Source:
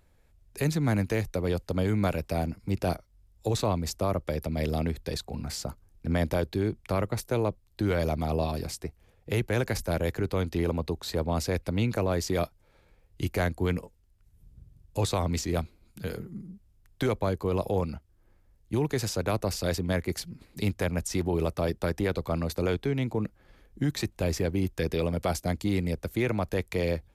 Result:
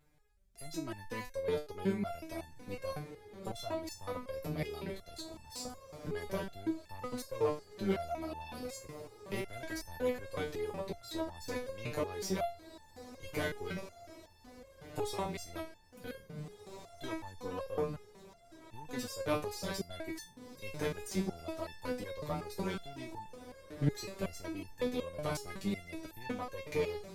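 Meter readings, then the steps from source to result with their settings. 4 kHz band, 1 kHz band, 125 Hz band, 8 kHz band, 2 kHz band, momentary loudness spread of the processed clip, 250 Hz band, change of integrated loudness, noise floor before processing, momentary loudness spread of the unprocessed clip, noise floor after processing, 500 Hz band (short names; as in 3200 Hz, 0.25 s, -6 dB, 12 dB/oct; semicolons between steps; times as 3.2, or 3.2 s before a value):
-8.0 dB, -7.5 dB, -14.5 dB, -9.0 dB, -8.0 dB, 14 LU, -10.0 dB, -10.0 dB, -63 dBFS, 8 LU, -60 dBFS, -8.0 dB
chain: one diode to ground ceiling -32 dBFS; diffused feedback echo 1.791 s, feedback 49%, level -13 dB; stepped resonator 5.4 Hz 150–890 Hz; gain +8 dB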